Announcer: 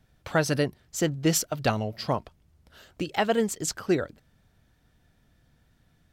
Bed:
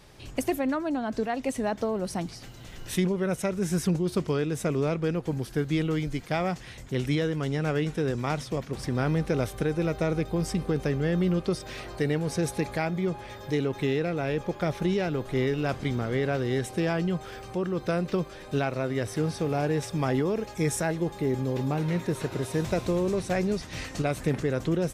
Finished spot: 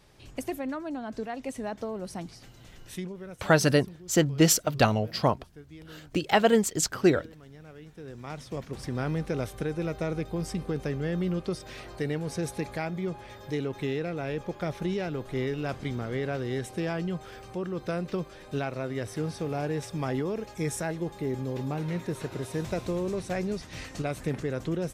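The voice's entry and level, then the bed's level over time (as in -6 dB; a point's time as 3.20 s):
3.15 s, +3.0 dB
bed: 2.70 s -6 dB
3.70 s -21 dB
7.78 s -21 dB
8.61 s -4 dB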